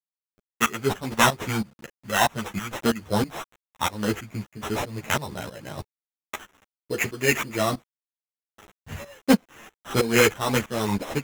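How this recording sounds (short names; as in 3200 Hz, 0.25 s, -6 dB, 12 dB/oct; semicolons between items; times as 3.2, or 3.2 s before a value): a quantiser's noise floor 8-bit, dither none; tremolo saw up 3.1 Hz, depth 90%; aliases and images of a low sample rate 4600 Hz, jitter 0%; a shimmering, thickened sound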